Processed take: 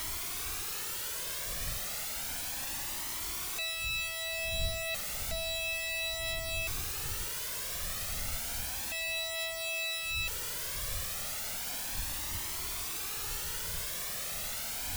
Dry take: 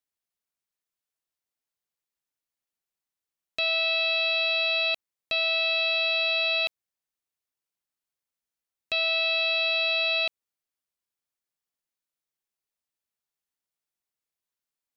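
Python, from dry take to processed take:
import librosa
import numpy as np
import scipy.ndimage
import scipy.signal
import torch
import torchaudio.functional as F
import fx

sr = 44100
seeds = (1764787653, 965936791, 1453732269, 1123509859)

y = np.sign(x) * np.sqrt(np.mean(np.square(x)))
y = fx.dmg_wind(y, sr, seeds[0], corner_hz=82.0, level_db=-44.0)
y = fx.comb_cascade(y, sr, direction='rising', hz=0.32)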